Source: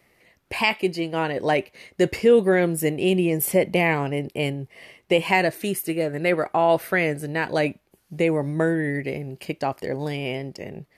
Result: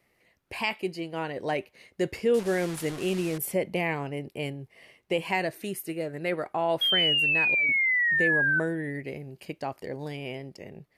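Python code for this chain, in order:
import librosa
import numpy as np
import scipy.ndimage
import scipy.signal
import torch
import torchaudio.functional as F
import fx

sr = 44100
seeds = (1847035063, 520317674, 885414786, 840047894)

y = fx.delta_mod(x, sr, bps=64000, step_db=-25.0, at=(2.34, 3.38))
y = fx.auto_swell(y, sr, attack_ms=599.0, at=(7.29, 7.69))
y = fx.spec_paint(y, sr, seeds[0], shape='fall', start_s=6.81, length_s=1.79, low_hz=1500.0, high_hz=3300.0, level_db=-16.0)
y = y * 10.0 ** (-8.0 / 20.0)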